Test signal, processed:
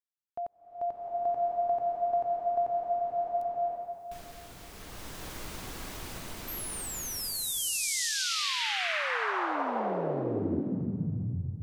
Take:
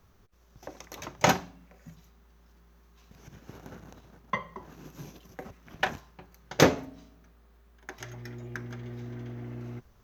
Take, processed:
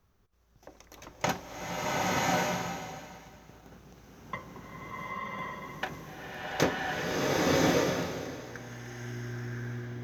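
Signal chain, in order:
slow-attack reverb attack 1,090 ms, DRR −8 dB
level −7.5 dB

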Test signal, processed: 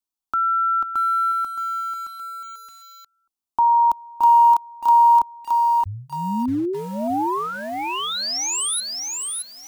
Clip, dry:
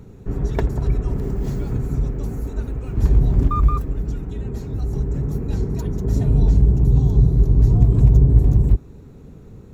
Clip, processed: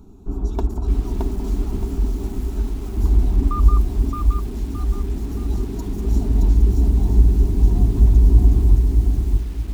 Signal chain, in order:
low-shelf EQ 340 Hz +3 dB
phaser with its sweep stopped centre 510 Hz, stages 6
feedback echo at a low word length 620 ms, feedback 35%, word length 7 bits, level −3 dB
level −1 dB

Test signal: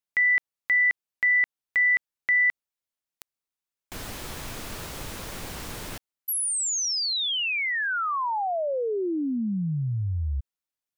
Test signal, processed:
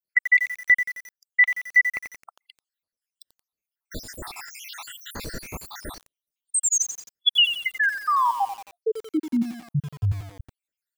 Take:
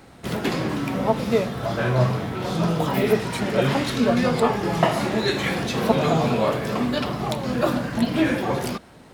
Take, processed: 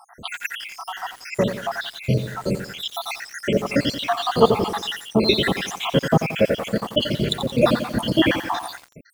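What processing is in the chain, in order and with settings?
time-frequency cells dropped at random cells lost 80%
dynamic equaliser 3,300 Hz, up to +8 dB, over −51 dBFS, Q 2.2
feedback echo at a low word length 88 ms, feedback 55%, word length 7 bits, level −9 dB
level +6.5 dB

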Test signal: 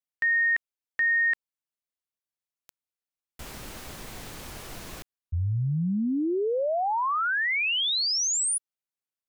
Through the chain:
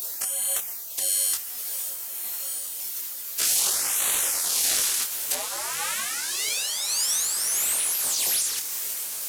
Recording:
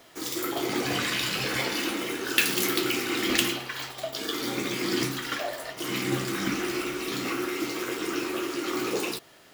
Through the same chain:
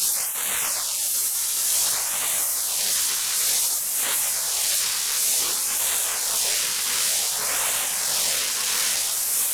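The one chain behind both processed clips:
linear delta modulator 64 kbit/s, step −16 dBFS
mains-hum notches 50/100/150/200 Hz
gate on every frequency bin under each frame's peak −15 dB weak
bass and treble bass −12 dB, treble +9 dB
in parallel at −1 dB: compressor whose output falls as the input rises −23 dBFS, ratio −0.5
on the sum: amplitude tremolo 1.7 Hz, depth 38%
soft clipping −7.5 dBFS
floating-point word with a short mantissa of 2 bits
auto-filter notch sine 0.55 Hz 610–5,200 Hz
on a send: feedback delay with all-pass diffusion 1,281 ms, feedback 42%, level −9 dB
on the sum: micro pitch shift up and down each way 18 cents

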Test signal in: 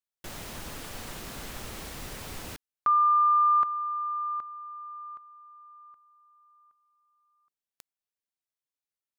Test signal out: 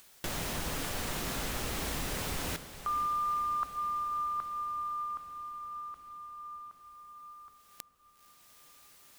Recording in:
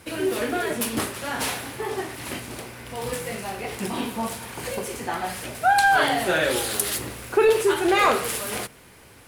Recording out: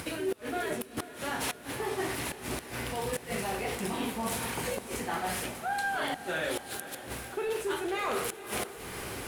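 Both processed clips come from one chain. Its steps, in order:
in parallel at +1 dB: upward compression, threshold −27 dBFS
on the sum: dynamic equaliser 4,700 Hz, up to −3 dB, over −43 dBFS, Q 6.7
reversed playback
downward compressor 12 to 1, threshold −25 dBFS
reversed playback
tuned comb filter 55 Hz, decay 0.28 s, harmonics odd, mix 50%
gate with flip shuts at −21 dBFS, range −26 dB
feedback delay with all-pass diffusion 482 ms, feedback 71%, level −14 dB

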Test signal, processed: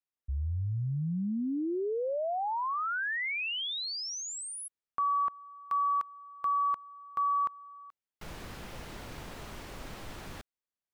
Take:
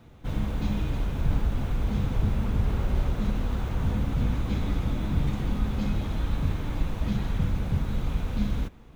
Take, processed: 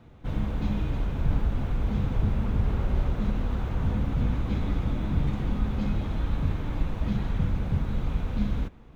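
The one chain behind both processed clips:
high-shelf EQ 5,100 Hz −11 dB

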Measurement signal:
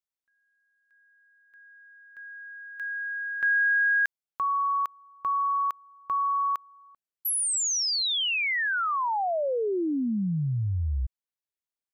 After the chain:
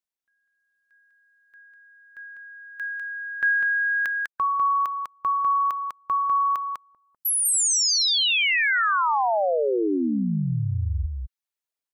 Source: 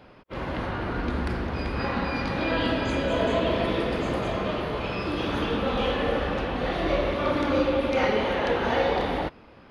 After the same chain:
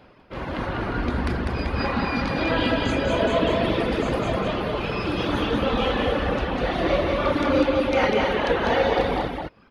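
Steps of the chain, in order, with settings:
reverb reduction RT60 0.93 s
automatic gain control gain up to 4 dB
single-tap delay 199 ms −4 dB

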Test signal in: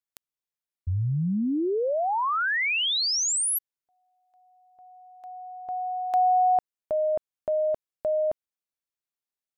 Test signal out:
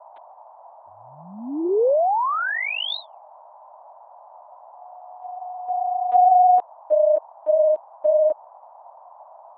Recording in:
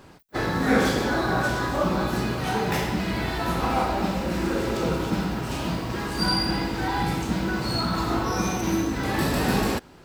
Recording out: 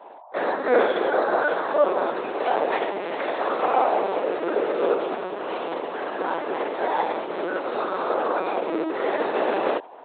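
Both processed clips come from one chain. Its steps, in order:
linear-prediction vocoder at 8 kHz pitch kept
tilt shelving filter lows +9 dB, about 780 Hz
noise in a band 610–1,000 Hz −52 dBFS
high-pass filter 440 Hz 24 dB per octave
level +6 dB

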